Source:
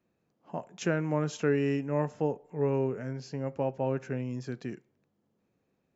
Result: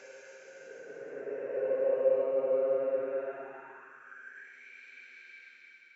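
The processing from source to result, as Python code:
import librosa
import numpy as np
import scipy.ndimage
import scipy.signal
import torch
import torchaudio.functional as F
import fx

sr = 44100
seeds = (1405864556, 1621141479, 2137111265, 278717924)

y = fx.block_reorder(x, sr, ms=118.0, group=3)
y = fx.paulstretch(y, sr, seeds[0], factor=21.0, window_s=0.1, from_s=4.04)
y = fx.filter_sweep_highpass(y, sr, from_hz=530.0, to_hz=2300.0, start_s=3.12, end_s=4.7, q=5.2)
y = F.gain(torch.from_numpy(y), -7.0).numpy()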